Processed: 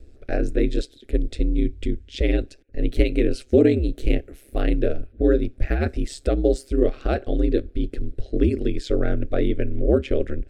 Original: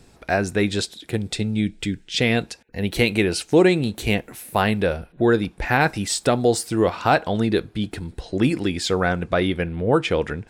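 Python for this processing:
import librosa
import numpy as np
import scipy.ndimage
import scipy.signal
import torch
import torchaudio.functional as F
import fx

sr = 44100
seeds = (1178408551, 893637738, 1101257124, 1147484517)

y = x * np.sin(2.0 * np.pi * 68.0 * np.arange(len(x)) / sr)
y = fx.tilt_eq(y, sr, slope=-3.5)
y = fx.fixed_phaser(y, sr, hz=390.0, stages=4)
y = F.gain(torch.from_numpy(y), -1.5).numpy()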